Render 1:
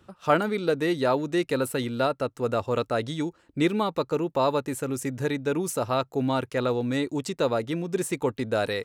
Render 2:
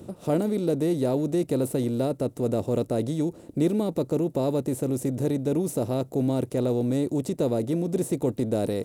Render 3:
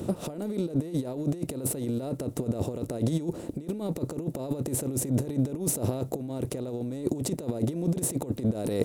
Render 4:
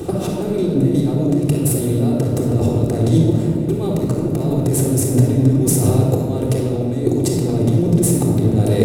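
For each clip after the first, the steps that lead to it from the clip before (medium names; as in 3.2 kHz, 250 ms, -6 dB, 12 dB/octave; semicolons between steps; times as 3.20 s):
spectral levelling over time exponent 0.6; FFT filter 210 Hz 0 dB, 630 Hz -7 dB, 1.3 kHz -23 dB, 11 kHz -5 dB; trim +1.5 dB
compressor with a negative ratio -30 dBFS, ratio -0.5; trim +2 dB
simulated room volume 3500 m³, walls mixed, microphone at 3.7 m; trim +6.5 dB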